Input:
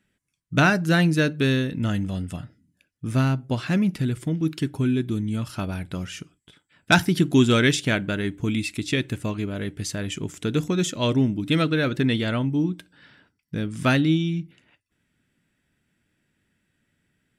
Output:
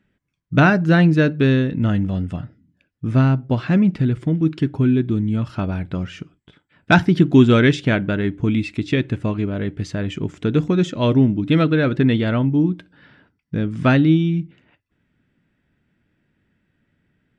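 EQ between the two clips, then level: tape spacing loss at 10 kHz 25 dB; +6.5 dB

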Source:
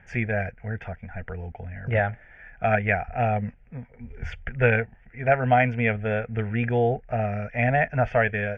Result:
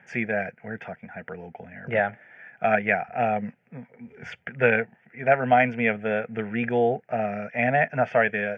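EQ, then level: high-pass 160 Hz 24 dB/octave; +1.0 dB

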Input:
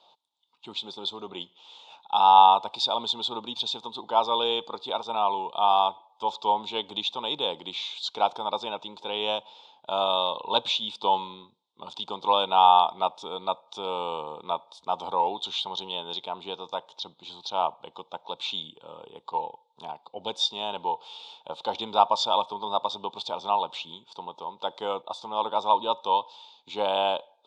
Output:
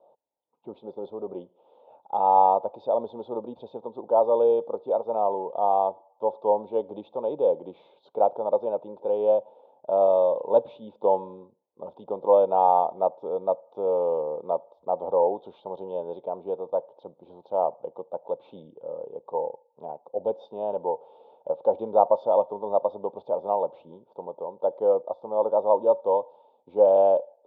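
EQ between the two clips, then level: resonant low-pass 550 Hz, resonance Q 4.4; 0.0 dB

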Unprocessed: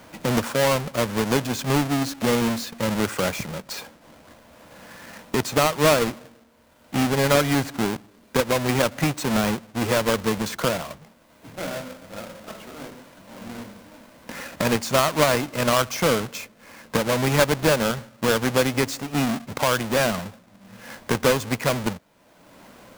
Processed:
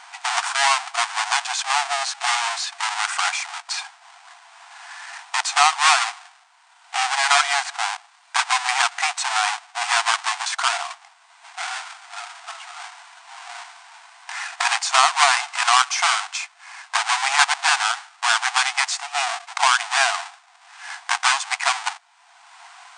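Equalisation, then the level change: brick-wall FIR band-pass 680–9500 Hz; +7.0 dB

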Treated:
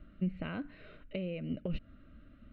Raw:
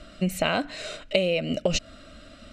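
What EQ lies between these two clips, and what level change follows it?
distance through air 430 m; tape spacing loss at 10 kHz 31 dB; peaking EQ 700 Hz -14.5 dB 1.1 oct; -5.0 dB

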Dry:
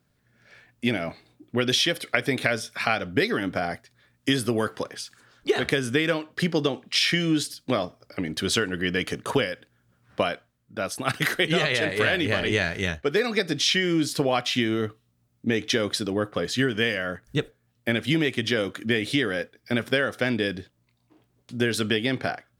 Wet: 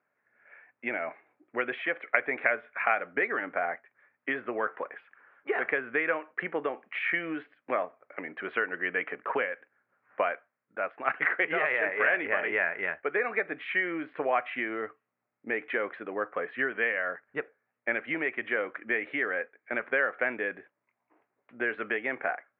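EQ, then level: high-pass 610 Hz 12 dB/octave; steep low-pass 2.3 kHz 48 dB/octave; 0.0 dB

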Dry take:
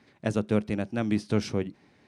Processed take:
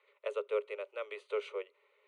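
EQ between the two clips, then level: rippled Chebyshev high-pass 400 Hz, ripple 6 dB; distance through air 76 m; static phaser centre 1.1 kHz, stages 8; 0.0 dB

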